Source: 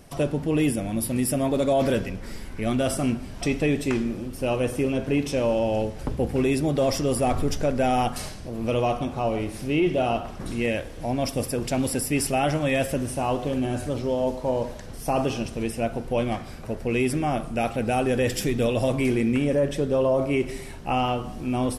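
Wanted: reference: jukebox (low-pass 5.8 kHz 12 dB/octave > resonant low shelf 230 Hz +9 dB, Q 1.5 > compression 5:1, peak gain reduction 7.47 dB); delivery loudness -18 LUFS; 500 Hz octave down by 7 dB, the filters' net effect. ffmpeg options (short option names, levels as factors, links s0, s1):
-af "lowpass=5800,lowshelf=f=230:t=q:w=1.5:g=9,equalizer=f=500:t=o:g=-7,acompressor=threshold=0.1:ratio=5,volume=2.51"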